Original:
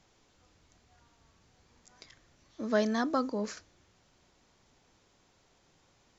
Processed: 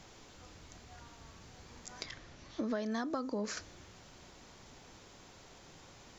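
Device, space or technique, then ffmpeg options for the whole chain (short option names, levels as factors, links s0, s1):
serial compression, peaks first: -filter_complex "[0:a]asettb=1/sr,asplit=3[s0][s1][s2];[s0]atrim=end=2.034[s3];[s1]atrim=start=2.03:end=2.91,asetpts=PTS-STARTPTS,afade=t=in:d=0.004:c=qsin,afade=t=out:st=0.876:d=0.004:c=qsin,lowpass=5900[s4];[s2]atrim=start=2.906[s5];[s3][s4]acrossfade=d=0.004:c1=hsin:c2=qsin[s6];[s6][s5]acrossfade=d=0.004:c1=qsin:c2=hsin,acompressor=threshold=0.0112:ratio=6,acompressor=threshold=0.00398:ratio=2,volume=3.55"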